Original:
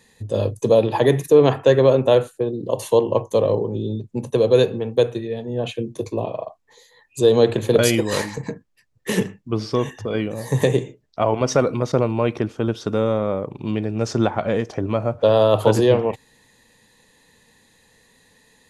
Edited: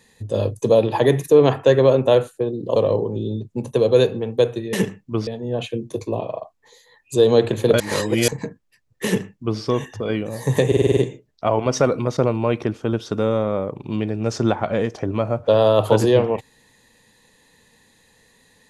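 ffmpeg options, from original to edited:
-filter_complex "[0:a]asplit=12[a][b][c][d][e][f][g][h][i][j][k][l];[a]atrim=end=2.762[m];[b]atrim=start=3.348:end=5.322[n];[c]atrim=start=9.108:end=9.652[o];[d]atrim=start=5.318:end=7.852[p];[e]atrim=start=7.848:end=8.332,asetpts=PTS-STARTPTS,areverse[q];[f]atrim=start=8.328:end=10.772[r];[g]atrim=start=10.718:end=10.772[s];[h]atrim=start=10.718:end=10.772[t];[i]atrim=start=10.718:end=10.772[u];[j]atrim=start=10.718:end=10.772[v];[k]atrim=start=10.718:end=10.772[w];[l]atrim=start=10.718[x];[m][n]acrossfade=d=0.004:c1=hsin:c2=hsin[y];[y][o]acrossfade=d=0.004:c1=hsin:c2=hsin[z];[z][p]acrossfade=d=0.004:c1=hsin:c2=hsin[aa];[aa][q]acrossfade=d=0.004:c1=hsin:c2=hsin[ab];[ab][r]acrossfade=d=0.004:c1=hsin:c2=hsin[ac];[ac][s]acrossfade=d=0.004:c1=hsin:c2=hsin[ad];[ad][t]acrossfade=d=0.004:c1=hsin:c2=hsin[ae];[ae][u]acrossfade=d=0.004:c1=hsin:c2=hsin[af];[af][v]acrossfade=d=0.004:c1=hsin:c2=hsin[ag];[ag][w]acrossfade=d=0.004:c1=hsin:c2=hsin[ah];[ah][x]acrossfade=d=0.004:c1=hsin:c2=hsin"

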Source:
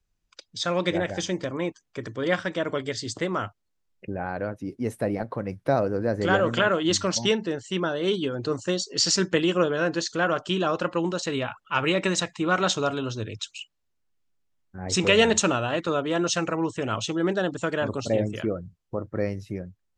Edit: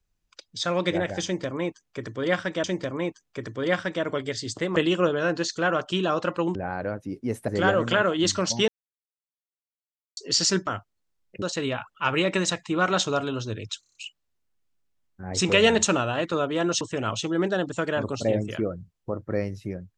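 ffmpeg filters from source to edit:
-filter_complex "[0:a]asplit=15[a][b][c][d][e][f][g][h][i][j][k][l][m][n][o];[a]atrim=end=2.642[p];[b]atrim=start=1.238:end=3.362[q];[c]atrim=start=9.328:end=11.122[r];[d]atrim=start=4.108:end=5.042[s];[e]atrim=start=6.138:end=7.34,asetpts=PTS-STARTPTS,afade=t=out:st=1.198:d=0.004:c=hsin[t];[f]atrim=start=7.34:end=8.83,asetpts=PTS-STARTPTS,volume=0[u];[g]atrim=start=8.83:end=9.332,asetpts=PTS-STARTPTS,afade=t=in:d=0.004:c=hsin[v];[h]atrim=start=3.358:end=4.112[w];[i]atrim=start=11.118:end=13.532[x];[j]atrim=start=13.498:end=13.532[y];[k]atrim=start=13.498:end=13.532[z];[l]atrim=start=13.498:end=13.532[aa];[m]atrim=start=13.498:end=13.532[ab];[n]atrim=start=13.498:end=16.362[ac];[o]atrim=start=16.658[ad];[p][q]acrossfade=d=0.004:c1=hsin:c2=hsin[ae];[ae][r]acrossfade=d=0.004:c1=hsin:c2=hsin[af];[af][s]acrossfade=d=0.004:c1=hsin:c2=hsin[ag];[t][u][v]concat=n=3:v=0:a=1[ah];[ag][ah]acrossfade=d=0.004:c1=hsin:c2=hsin[ai];[ai][w]acrossfade=d=0.004:c1=hsin:c2=hsin[aj];[aj][x]acrossfade=d=0.004:c1=hsin:c2=hsin[ak];[ak][y]acrossfade=d=0.004:c1=hsin:c2=hsin[al];[al][z]acrossfade=d=0.004:c1=hsin:c2=hsin[am];[am][aa]acrossfade=d=0.004:c1=hsin:c2=hsin[an];[an][ab]acrossfade=d=0.004:c1=hsin:c2=hsin[ao];[ao][ac]acrossfade=d=0.004:c1=hsin:c2=hsin[ap];[ap][ad]acrossfade=d=0.004:c1=hsin:c2=hsin"

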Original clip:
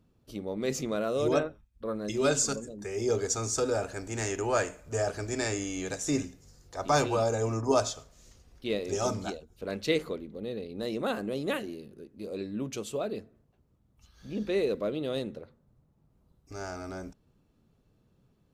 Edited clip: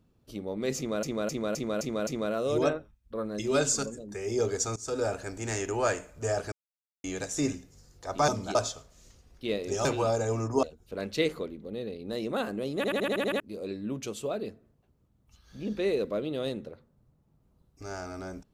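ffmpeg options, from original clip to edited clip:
-filter_complex "[0:a]asplit=21[a][b][c][d][e][f][g][h][i][j][k][l][m][n][o][p][q][r][s][t][u];[a]atrim=end=1.032[v];[b]atrim=start=0.768:end=1.032[w];[c]atrim=start=0.768:end=1.032[x];[d]atrim=start=0.768:end=1.032[y];[e]atrim=start=0.768:end=1.032[z];[f]atrim=start=0.768:end=3.46,asetpts=PTS-STARTPTS,afade=t=out:st=2.688:d=0.004:c=hsin:silence=0.0891251[aa];[g]atrim=start=3.46:end=5.22,asetpts=PTS-STARTPTS,afade=t=in:d=0.27:silence=0.0891251,afade=t=out:st=1.756:d=0.004:c=hsin[ab];[h]atrim=start=5.22:end=5.74,asetpts=PTS-STARTPTS,volume=0[ac];[i]atrim=start=5.74:end=6.982,asetpts=PTS-STARTPTS,afade=t=in:d=0.004:c=hsin[ad];[j]atrim=start=9.058:end=9.332[ae];[k]atrim=start=7.758:end=9.062[af];[l]atrim=start=6.978:end=7.762[ag];[m]atrim=start=9.328:end=11.542[ah];[n]atrim=start=11.458:end=11.542[ai];[o]atrim=start=11.458:end=11.542[aj];[p]atrim=start=11.458:end=11.542[ak];[q]atrim=start=11.458:end=11.542[al];[r]atrim=start=11.458:end=11.542[am];[s]atrim=start=11.458:end=11.542[an];[t]atrim=start=11.458:end=11.542[ao];[u]atrim=start=12.098[ap];[v][w]acrossfade=d=0.004:c1=hsin:c2=hsin[aq];[aq][x]acrossfade=d=0.004:c1=hsin:c2=hsin[ar];[ar][y]acrossfade=d=0.004:c1=hsin:c2=hsin[as];[as][z]acrossfade=d=0.004:c1=hsin:c2=hsin[at];[aa][ab][ac][ad]concat=n=4:v=0:a=1[au];[at][au]acrossfade=d=0.004:c1=hsin:c2=hsin[av];[av][ae]acrossfade=d=0.004:c1=hsin:c2=hsin[aw];[aw][af]acrossfade=d=0.004:c1=hsin:c2=hsin[ax];[ax][ag]acrossfade=d=0.004:c1=hsin:c2=hsin[ay];[ay][ah]acrossfade=d=0.004:c1=hsin:c2=hsin[az];[az][ai]acrossfade=d=0.004:c1=hsin:c2=hsin[ba];[ba][aj]acrossfade=d=0.004:c1=hsin:c2=hsin[bb];[bb][ak]acrossfade=d=0.004:c1=hsin:c2=hsin[bc];[bc][al]acrossfade=d=0.004:c1=hsin:c2=hsin[bd];[bd][am]acrossfade=d=0.004:c1=hsin:c2=hsin[be];[be][an]acrossfade=d=0.004:c1=hsin:c2=hsin[bf];[bf][ao]acrossfade=d=0.004:c1=hsin:c2=hsin[bg];[bg][ap]acrossfade=d=0.004:c1=hsin:c2=hsin"

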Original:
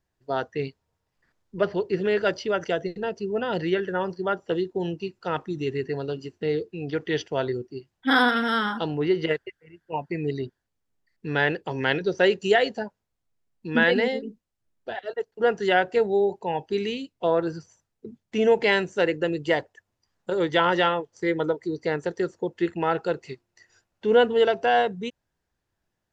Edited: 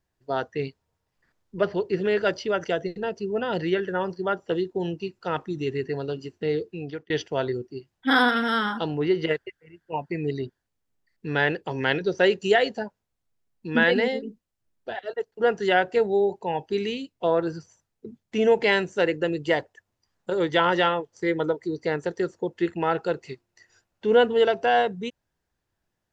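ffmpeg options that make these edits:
-filter_complex "[0:a]asplit=2[a][b];[a]atrim=end=7.1,asetpts=PTS-STARTPTS,afade=t=out:st=6.77:d=0.33[c];[b]atrim=start=7.1,asetpts=PTS-STARTPTS,afade=t=in:d=0.004:c=hsin[d];[c][d]concat=n=2:v=0:a=1"

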